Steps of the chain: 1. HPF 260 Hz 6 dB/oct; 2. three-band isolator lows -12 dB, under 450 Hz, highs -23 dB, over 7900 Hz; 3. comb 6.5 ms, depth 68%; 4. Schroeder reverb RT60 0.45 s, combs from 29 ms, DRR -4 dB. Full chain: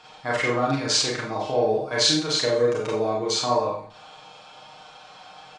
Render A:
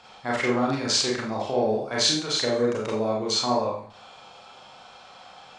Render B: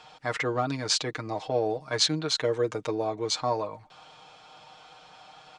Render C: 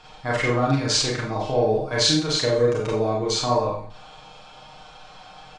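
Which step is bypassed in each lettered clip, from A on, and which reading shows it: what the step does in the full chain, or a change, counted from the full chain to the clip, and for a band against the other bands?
3, 250 Hz band +3.5 dB; 4, 125 Hz band +2.5 dB; 1, 125 Hz band +7.0 dB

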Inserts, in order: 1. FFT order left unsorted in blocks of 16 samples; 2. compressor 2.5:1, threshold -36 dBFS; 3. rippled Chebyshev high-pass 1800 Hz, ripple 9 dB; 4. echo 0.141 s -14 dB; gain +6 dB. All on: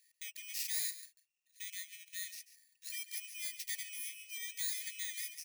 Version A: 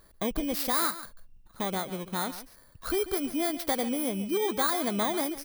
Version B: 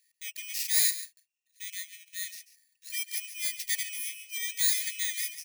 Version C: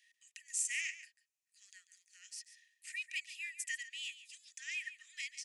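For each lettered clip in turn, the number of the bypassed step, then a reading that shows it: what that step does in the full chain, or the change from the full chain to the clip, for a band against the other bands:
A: 3, crest factor change -6.5 dB; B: 2, mean gain reduction 6.5 dB; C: 1, crest factor change +2.0 dB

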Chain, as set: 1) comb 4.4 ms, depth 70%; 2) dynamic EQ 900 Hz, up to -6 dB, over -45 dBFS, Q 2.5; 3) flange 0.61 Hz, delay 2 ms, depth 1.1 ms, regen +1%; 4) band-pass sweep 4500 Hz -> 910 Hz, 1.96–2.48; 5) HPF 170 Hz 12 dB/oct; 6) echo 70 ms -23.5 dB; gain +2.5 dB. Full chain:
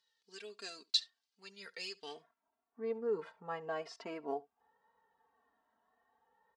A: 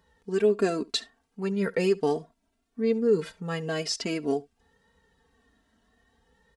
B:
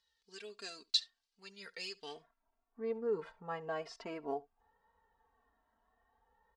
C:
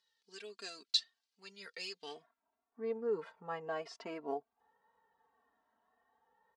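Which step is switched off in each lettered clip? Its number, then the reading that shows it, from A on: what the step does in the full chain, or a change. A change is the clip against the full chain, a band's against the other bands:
4, 125 Hz band +12.5 dB; 5, 125 Hz band +3.0 dB; 6, momentary loudness spread change -2 LU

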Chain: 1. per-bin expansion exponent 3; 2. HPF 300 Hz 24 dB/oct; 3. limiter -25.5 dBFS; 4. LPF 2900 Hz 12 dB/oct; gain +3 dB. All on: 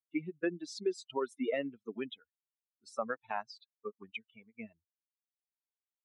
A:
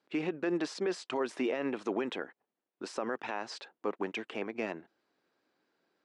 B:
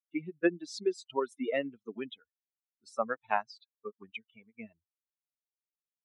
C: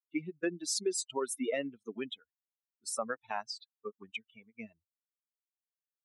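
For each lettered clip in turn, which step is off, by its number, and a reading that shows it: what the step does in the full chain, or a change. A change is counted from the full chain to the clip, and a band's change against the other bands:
1, 1 kHz band -1.5 dB; 3, crest factor change +6.5 dB; 4, 8 kHz band +17.0 dB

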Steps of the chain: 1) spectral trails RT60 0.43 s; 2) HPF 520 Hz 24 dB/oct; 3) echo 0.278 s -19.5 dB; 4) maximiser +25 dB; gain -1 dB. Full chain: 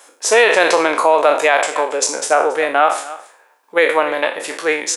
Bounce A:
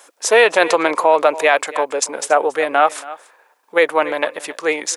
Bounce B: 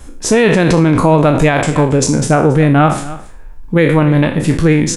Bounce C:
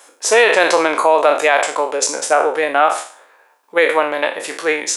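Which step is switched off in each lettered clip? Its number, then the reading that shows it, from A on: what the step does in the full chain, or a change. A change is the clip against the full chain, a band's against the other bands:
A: 1, 8 kHz band -1.5 dB; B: 2, 250 Hz band +18.5 dB; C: 3, momentary loudness spread change -1 LU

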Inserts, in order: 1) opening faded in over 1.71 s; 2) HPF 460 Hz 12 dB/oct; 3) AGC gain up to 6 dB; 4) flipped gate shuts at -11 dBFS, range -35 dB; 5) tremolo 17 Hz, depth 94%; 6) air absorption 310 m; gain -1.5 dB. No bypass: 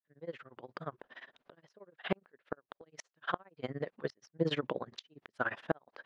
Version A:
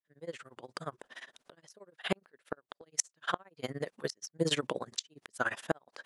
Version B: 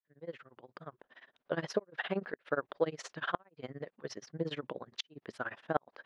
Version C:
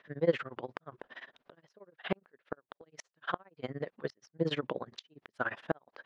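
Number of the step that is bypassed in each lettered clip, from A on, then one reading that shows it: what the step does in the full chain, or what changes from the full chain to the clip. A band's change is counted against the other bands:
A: 6, 4 kHz band +6.5 dB; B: 3, momentary loudness spread change -2 LU; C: 1, 500 Hz band +2.5 dB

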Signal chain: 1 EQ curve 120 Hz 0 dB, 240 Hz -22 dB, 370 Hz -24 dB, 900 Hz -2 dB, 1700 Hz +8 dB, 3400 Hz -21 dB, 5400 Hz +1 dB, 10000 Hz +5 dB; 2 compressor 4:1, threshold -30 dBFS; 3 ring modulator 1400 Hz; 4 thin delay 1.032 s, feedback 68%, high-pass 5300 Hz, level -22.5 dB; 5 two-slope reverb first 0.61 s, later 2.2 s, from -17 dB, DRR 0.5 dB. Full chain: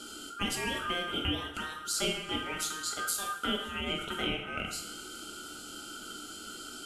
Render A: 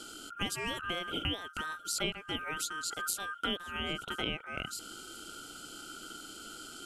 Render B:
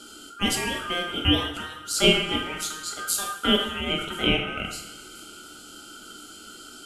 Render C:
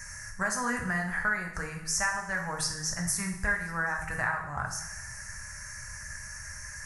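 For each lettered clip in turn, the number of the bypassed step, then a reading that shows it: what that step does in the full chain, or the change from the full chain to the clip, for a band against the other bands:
5, crest factor change +4.5 dB; 2, momentary loudness spread change +10 LU; 3, 4 kHz band -11.0 dB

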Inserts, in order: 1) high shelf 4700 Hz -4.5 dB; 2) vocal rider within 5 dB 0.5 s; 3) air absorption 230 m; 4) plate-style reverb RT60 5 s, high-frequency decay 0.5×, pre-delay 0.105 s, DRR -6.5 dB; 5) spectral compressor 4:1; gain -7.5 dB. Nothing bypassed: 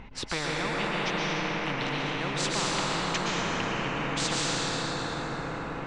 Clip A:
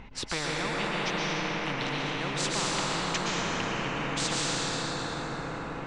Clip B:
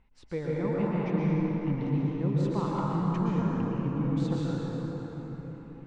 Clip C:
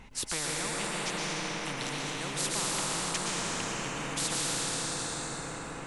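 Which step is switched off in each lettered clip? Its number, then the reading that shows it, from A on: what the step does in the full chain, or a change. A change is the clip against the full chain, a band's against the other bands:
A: 1, 8 kHz band +2.0 dB; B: 5, 4 kHz band -21.5 dB; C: 3, 8 kHz band +10.5 dB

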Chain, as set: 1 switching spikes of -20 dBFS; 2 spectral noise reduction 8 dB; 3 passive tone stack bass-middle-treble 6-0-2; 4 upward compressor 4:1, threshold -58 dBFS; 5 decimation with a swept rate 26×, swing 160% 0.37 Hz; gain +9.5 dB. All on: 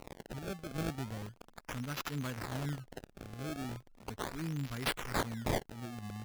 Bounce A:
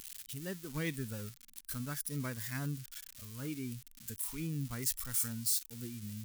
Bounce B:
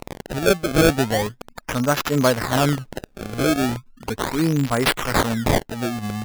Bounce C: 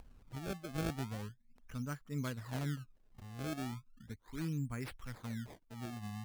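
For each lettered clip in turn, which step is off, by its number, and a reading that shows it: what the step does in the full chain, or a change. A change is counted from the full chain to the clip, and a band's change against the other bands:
5, 8 kHz band +13.5 dB; 3, 500 Hz band +4.0 dB; 1, distortion -4 dB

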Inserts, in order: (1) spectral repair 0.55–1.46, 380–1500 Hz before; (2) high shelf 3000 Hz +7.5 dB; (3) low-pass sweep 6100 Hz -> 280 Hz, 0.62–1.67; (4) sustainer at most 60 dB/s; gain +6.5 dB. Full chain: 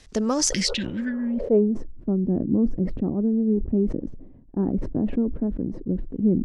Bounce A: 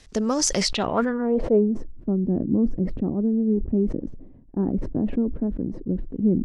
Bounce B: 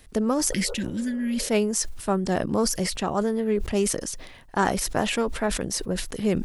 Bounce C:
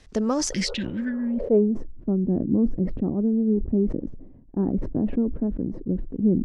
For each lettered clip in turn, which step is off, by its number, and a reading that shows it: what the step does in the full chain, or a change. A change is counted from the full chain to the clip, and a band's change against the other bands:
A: 1, 1 kHz band +6.0 dB; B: 3, 1 kHz band +14.0 dB; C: 2, crest factor change -3.0 dB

